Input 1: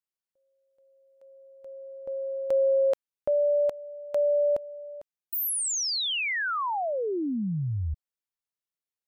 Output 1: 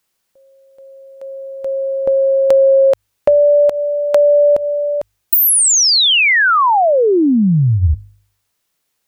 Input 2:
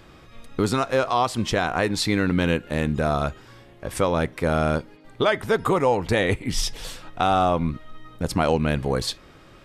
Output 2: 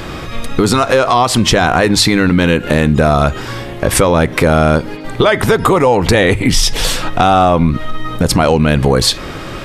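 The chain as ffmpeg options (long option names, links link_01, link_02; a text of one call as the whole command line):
ffmpeg -i in.wav -af "acompressor=threshold=-37dB:ratio=3:attack=29:release=142:knee=6:detection=peak,bandreject=frequency=50.41:width_type=h:width=4,bandreject=frequency=100.82:width_type=h:width=4,apsyclip=26.5dB,volume=-3dB" out.wav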